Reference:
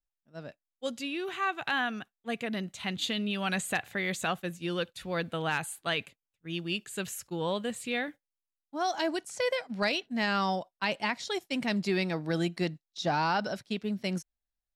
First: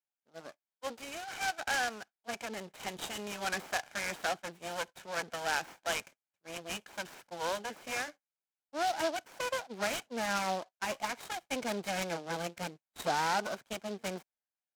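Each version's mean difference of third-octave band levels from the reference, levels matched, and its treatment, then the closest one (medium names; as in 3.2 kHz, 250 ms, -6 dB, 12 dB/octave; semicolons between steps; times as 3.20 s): 9.5 dB: comb filter that takes the minimum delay 1.3 ms; band-pass 290–3200 Hz; delay time shaken by noise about 3.6 kHz, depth 0.047 ms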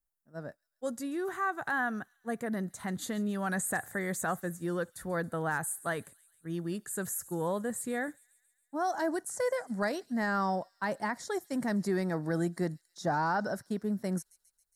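4.5 dB: FFT filter 1.8 kHz 0 dB, 2.6 kHz -23 dB, 9.4 kHz +6 dB; in parallel at -2 dB: peak limiter -29 dBFS, peak gain reduction 12 dB; on the sum: feedback echo behind a high-pass 137 ms, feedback 62%, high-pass 4.5 kHz, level -17 dB; trim -3.5 dB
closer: second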